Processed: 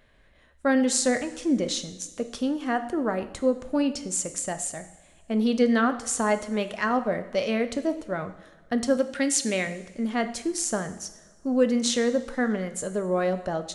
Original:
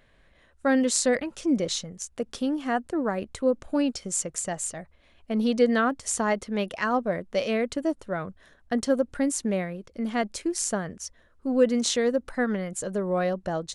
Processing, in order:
0:08.97–0:09.67: meter weighting curve D
convolution reverb, pre-delay 3 ms, DRR 8.5 dB

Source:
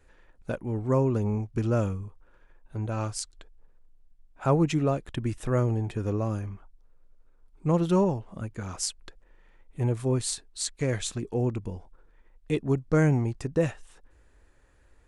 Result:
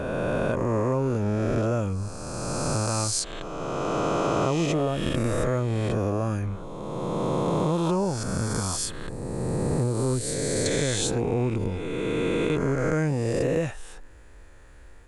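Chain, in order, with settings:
peak hold with a rise ahead of every peak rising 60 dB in 2.48 s
0:08.23–0:10.66: parametric band 5,000 Hz −12.5 dB 2.2 octaves
downward compressor 5 to 1, threshold −29 dBFS, peak gain reduction 13 dB
level +7 dB

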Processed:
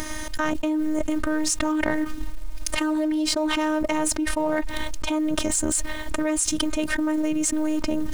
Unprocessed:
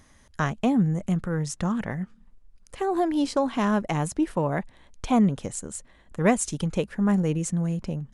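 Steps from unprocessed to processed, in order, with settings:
mu-law and A-law mismatch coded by A
phases set to zero 308 Hz
envelope flattener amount 100%
level −4 dB

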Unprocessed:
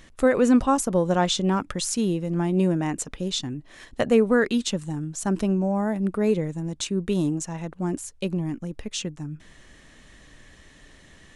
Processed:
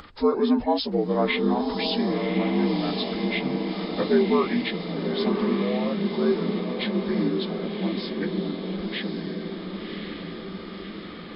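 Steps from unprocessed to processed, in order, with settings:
partials spread apart or drawn together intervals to 80%
upward compression, threshold −36 dBFS
low-shelf EQ 150 Hz −6 dB
feedback delay with all-pass diffusion 1,091 ms, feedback 64%, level −5 dB

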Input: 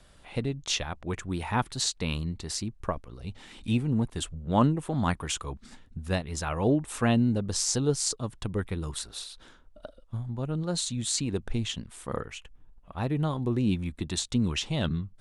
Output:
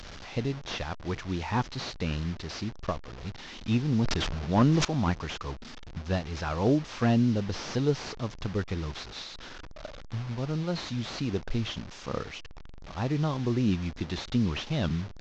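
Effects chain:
linear delta modulator 32 kbit/s, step −37 dBFS
0:03.85–0:04.85: level that may fall only so fast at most 24 dB per second

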